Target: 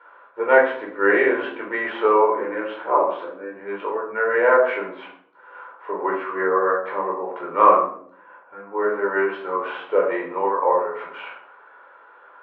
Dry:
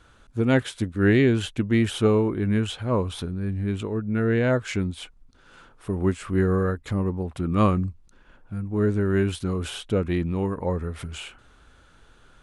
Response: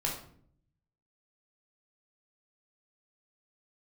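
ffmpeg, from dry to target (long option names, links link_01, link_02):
-filter_complex "[0:a]asettb=1/sr,asplit=3[link_01][link_02][link_03];[link_01]atrim=end=2.404[link_04];[link_02]atrim=start=2.4:end=3.56,asetpts=PTS-STARTPTS,afade=type=in:duration=0.004:curve=qsin,afade=type=out:start_time=1.156:duration=0.004:curve=qsin,aeval=exprs='val(0)*sin(2*PI*99*n/s)':channel_layout=same[link_05];[link_03]atrim=start=3.556[link_06];[link_04][link_05]acrossfade=duration=0.004:curve1=hsin:curve2=qsin[link_07];[link_07][link_06]acrossfade=duration=0.004:curve1=qsin:curve2=hsin,highpass=frequency=460:width=0.5412,highpass=frequency=460:width=1.3066,equalizer=frequency=590:width_type=q:width=4:gain=4,equalizer=frequency=1000:width_type=q:width=4:gain=10,equalizer=frequency=1600:width_type=q:width=4:gain=3,lowpass=frequency=2100:width=0.5412,lowpass=frequency=2100:width=1.3066[link_08];[1:a]atrim=start_sample=2205[link_09];[link_08][link_09]afir=irnorm=-1:irlink=0,volume=3dB"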